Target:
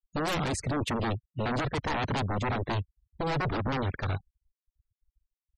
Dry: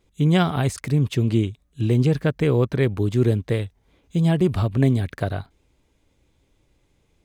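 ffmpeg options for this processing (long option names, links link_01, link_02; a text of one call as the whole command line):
ffmpeg -i in.wav -af "aeval=exprs='0.0631*(abs(mod(val(0)/0.0631+3,4)-2)-1)':channel_layout=same,atempo=1.3,afftfilt=real='re*gte(hypot(re,im),0.01)':imag='im*gte(hypot(re,im),0.01)':win_size=1024:overlap=0.75" out.wav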